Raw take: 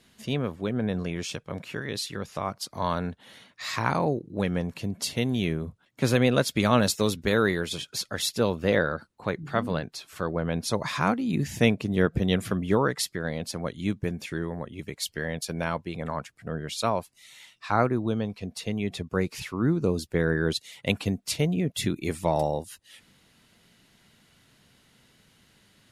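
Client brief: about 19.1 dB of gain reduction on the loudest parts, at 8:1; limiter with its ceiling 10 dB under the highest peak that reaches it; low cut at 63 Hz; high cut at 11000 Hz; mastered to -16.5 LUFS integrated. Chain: HPF 63 Hz; LPF 11000 Hz; compressor 8:1, threshold -37 dBFS; gain +26.5 dB; limiter -4 dBFS

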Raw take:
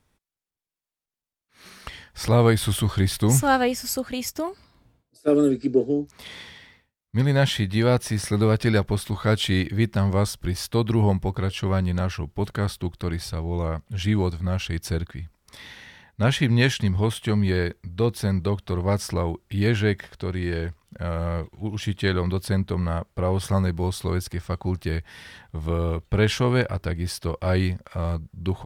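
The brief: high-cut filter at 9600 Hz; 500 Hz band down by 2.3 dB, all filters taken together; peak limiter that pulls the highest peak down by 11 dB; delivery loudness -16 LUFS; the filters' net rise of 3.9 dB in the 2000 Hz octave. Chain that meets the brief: LPF 9600 Hz; bell 500 Hz -3 dB; bell 2000 Hz +5 dB; gain +10.5 dB; limiter -4 dBFS

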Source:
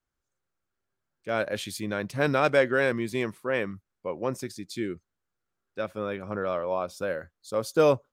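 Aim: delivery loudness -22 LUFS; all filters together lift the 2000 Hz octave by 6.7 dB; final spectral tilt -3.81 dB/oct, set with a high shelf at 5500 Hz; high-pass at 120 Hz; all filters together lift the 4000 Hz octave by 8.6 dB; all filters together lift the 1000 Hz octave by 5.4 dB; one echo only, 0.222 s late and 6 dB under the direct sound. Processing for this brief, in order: HPF 120 Hz; bell 1000 Hz +5 dB; bell 2000 Hz +5 dB; bell 4000 Hz +7.5 dB; high shelf 5500 Hz +3.5 dB; echo 0.222 s -6 dB; gain +2.5 dB

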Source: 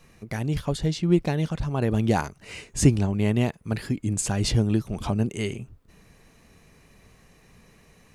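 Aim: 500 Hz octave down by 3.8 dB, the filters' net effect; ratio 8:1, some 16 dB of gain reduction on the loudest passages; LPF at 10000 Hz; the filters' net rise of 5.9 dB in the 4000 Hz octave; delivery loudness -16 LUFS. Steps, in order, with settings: LPF 10000 Hz; bell 500 Hz -5.5 dB; bell 4000 Hz +7.5 dB; compressor 8:1, threshold -29 dBFS; gain +18 dB

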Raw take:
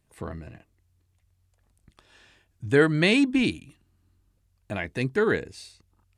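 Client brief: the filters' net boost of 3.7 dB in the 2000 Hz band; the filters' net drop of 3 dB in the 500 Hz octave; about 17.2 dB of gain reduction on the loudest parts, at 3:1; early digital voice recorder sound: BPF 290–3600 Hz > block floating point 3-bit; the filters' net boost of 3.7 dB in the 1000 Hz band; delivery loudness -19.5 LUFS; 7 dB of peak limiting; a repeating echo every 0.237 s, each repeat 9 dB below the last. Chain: bell 500 Hz -3.5 dB; bell 1000 Hz +4.5 dB; bell 2000 Hz +4 dB; compressor 3:1, threshold -39 dBFS; limiter -30 dBFS; BPF 290–3600 Hz; feedback echo 0.237 s, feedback 35%, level -9 dB; block floating point 3-bit; gain +24.5 dB

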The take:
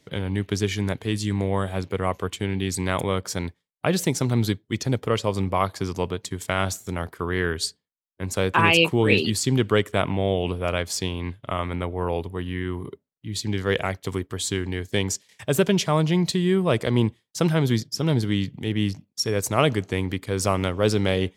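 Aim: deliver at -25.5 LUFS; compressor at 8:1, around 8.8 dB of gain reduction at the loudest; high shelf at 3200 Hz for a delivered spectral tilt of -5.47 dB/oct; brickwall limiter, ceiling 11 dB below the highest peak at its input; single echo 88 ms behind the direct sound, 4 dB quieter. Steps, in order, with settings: high shelf 3200 Hz -7 dB; compressor 8:1, threshold -23 dBFS; limiter -19 dBFS; echo 88 ms -4 dB; gain +5 dB

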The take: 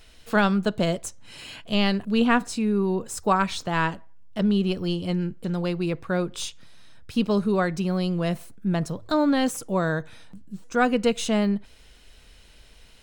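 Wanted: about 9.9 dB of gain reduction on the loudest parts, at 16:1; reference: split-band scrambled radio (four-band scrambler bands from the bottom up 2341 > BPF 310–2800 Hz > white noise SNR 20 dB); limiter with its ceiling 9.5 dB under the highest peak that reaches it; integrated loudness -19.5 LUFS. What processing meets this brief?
compressor 16:1, threshold -25 dBFS; limiter -24.5 dBFS; four-band scrambler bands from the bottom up 2341; BPF 310–2800 Hz; white noise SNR 20 dB; gain +20 dB

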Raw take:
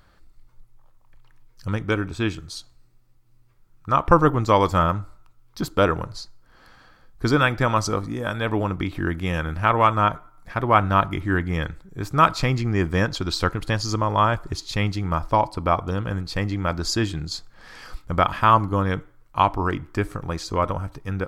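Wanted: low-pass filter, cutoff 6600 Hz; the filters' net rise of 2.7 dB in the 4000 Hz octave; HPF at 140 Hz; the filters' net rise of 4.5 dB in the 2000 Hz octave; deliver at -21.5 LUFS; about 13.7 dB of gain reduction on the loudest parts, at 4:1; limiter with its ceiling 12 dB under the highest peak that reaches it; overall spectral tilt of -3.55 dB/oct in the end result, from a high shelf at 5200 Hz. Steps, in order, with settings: HPF 140 Hz; LPF 6600 Hz; bell 2000 Hz +6 dB; bell 4000 Hz +4.5 dB; high shelf 5200 Hz -5.5 dB; compressor 4:1, threshold -26 dBFS; gain +12 dB; limiter -8.5 dBFS

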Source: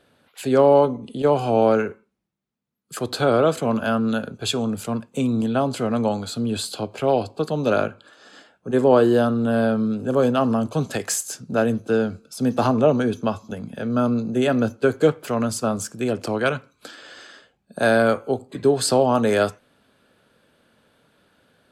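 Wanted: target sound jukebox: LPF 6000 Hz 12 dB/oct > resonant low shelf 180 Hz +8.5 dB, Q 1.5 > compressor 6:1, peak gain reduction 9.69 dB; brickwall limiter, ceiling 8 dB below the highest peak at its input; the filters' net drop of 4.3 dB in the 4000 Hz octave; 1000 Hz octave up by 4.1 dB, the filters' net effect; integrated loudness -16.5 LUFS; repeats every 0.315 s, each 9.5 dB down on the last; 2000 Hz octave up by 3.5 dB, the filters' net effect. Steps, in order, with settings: bell 1000 Hz +5.5 dB; bell 2000 Hz +3.5 dB; bell 4000 Hz -6 dB; limiter -9.5 dBFS; LPF 6000 Hz 12 dB/oct; resonant low shelf 180 Hz +8.5 dB, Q 1.5; feedback echo 0.315 s, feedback 33%, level -9.5 dB; compressor 6:1, threshold -22 dBFS; gain +10.5 dB

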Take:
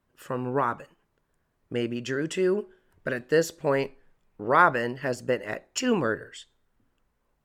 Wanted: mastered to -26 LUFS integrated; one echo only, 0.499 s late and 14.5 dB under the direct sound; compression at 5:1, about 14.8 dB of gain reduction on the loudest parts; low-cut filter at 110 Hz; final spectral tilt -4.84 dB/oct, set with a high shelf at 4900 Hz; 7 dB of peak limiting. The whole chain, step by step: HPF 110 Hz; high shelf 4900 Hz -4 dB; compressor 5:1, threshold -31 dBFS; limiter -25.5 dBFS; echo 0.499 s -14.5 dB; gain +12 dB

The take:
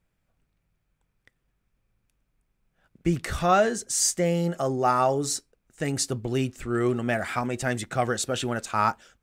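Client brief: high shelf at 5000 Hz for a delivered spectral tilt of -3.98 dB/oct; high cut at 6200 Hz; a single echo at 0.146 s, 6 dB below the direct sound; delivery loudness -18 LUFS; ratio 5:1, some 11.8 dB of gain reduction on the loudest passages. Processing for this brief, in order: LPF 6200 Hz; high shelf 5000 Hz +6 dB; compressor 5:1, threshold -30 dBFS; echo 0.146 s -6 dB; gain +14.5 dB

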